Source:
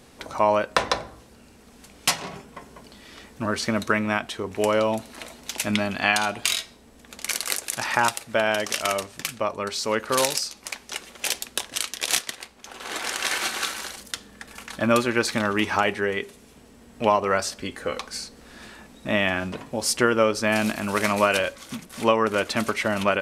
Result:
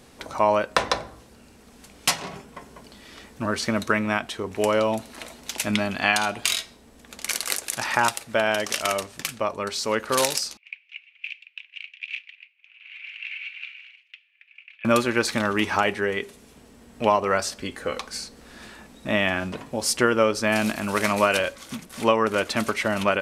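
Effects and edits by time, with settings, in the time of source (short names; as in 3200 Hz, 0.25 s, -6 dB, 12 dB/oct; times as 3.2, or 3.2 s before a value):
10.57–14.85 Butterworth band-pass 2500 Hz, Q 4.3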